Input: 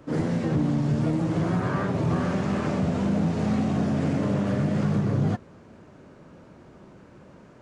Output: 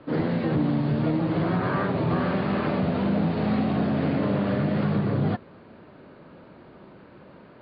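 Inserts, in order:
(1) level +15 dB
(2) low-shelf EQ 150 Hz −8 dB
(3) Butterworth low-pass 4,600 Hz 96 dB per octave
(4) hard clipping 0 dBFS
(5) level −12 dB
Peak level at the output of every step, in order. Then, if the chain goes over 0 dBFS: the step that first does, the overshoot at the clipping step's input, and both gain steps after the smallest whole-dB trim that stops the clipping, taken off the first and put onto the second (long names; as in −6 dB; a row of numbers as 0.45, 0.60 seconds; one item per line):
−1.5, −2.0, −2.0, −2.0, −14.0 dBFS
no step passes full scale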